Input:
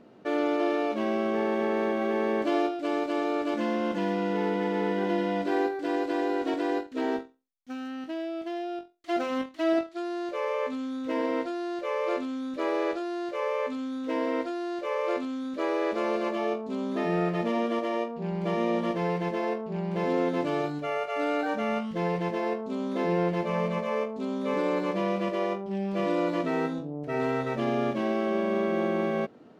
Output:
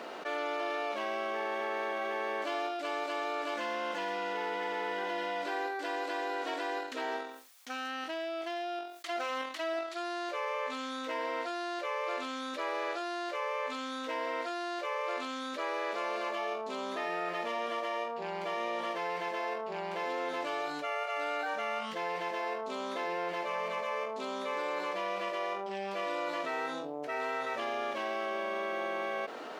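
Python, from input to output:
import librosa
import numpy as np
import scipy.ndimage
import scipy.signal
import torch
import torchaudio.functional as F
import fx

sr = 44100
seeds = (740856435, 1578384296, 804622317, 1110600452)

y = scipy.signal.sosfilt(scipy.signal.butter(2, 770.0, 'highpass', fs=sr, output='sos'), x)
y = fx.env_flatten(y, sr, amount_pct=70)
y = y * 10.0 ** (-4.0 / 20.0)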